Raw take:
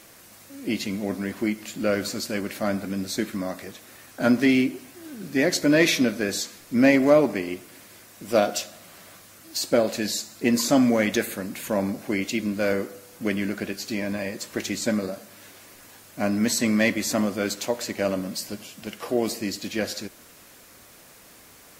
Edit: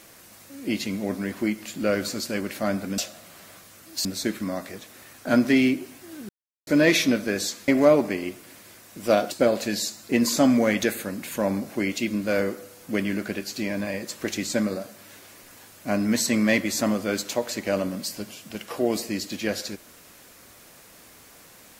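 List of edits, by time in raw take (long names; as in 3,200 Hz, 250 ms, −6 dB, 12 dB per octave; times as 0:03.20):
0:05.22–0:05.60: silence
0:06.61–0:06.93: remove
0:08.56–0:09.63: move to 0:02.98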